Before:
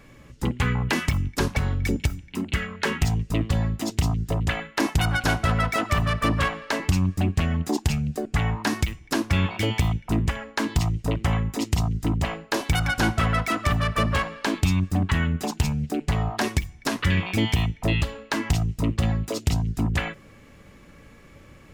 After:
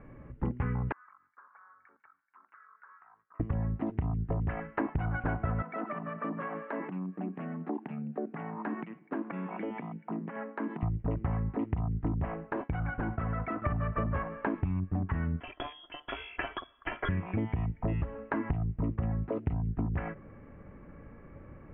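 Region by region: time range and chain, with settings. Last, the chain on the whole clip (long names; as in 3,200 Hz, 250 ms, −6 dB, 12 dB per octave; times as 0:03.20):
0:00.92–0:03.40: flat-topped band-pass 1,300 Hz, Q 2.8 + downward compressor 5 to 1, threshold −50 dBFS + multiband upward and downward expander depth 40%
0:05.62–0:10.83: downward compressor 4 to 1, threshold −29 dBFS + Butterworth high-pass 170 Hz 48 dB per octave + one half of a high-frequency compander decoder only
0:12.52–0:13.62: downward expander −28 dBFS + downward compressor, threshold −26 dBFS
0:15.40–0:17.09: voice inversion scrambler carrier 3,400 Hz + comb filter 3 ms, depth 56%
whole clip: Bessel low-pass filter 1,200 Hz, order 8; downward compressor, threshold −28 dBFS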